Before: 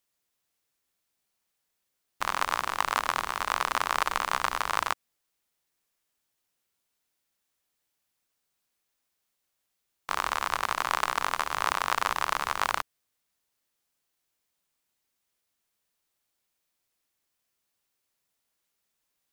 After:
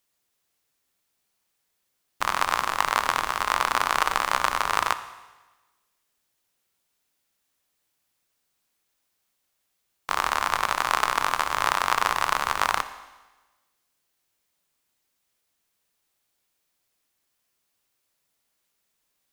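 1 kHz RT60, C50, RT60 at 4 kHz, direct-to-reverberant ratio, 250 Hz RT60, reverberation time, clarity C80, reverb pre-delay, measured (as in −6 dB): 1.2 s, 13.0 dB, 1.2 s, 11.0 dB, 1.2 s, 1.2 s, 14.5 dB, 19 ms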